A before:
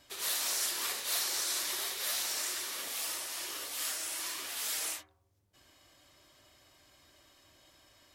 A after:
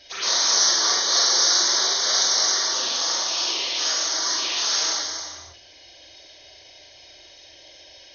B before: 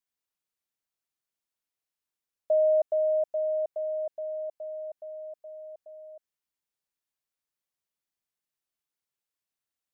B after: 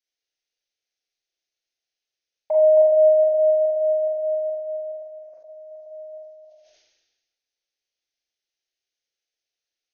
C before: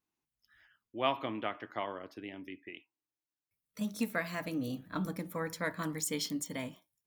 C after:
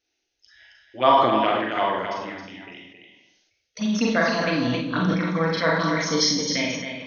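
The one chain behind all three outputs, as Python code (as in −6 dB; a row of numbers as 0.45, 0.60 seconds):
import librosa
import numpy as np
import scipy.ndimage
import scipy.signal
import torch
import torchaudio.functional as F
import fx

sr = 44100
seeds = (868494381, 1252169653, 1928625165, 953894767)

y = fx.low_shelf(x, sr, hz=490.0, db=-9.5)
y = fx.env_phaser(y, sr, low_hz=180.0, high_hz=2600.0, full_db=-35.0)
y = fx.brickwall_lowpass(y, sr, high_hz=6600.0)
y = y + 10.0 ** (-7.0 / 20.0) * np.pad(y, (int(270 * sr / 1000.0), 0))[:len(y)]
y = fx.rev_schroeder(y, sr, rt60_s=0.54, comb_ms=33, drr_db=-0.5)
y = fx.sustainer(y, sr, db_per_s=44.0)
y = y * 10.0 ** (-24 / 20.0) / np.sqrt(np.mean(np.square(y)))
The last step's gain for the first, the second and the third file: +15.5, +5.5, +16.5 decibels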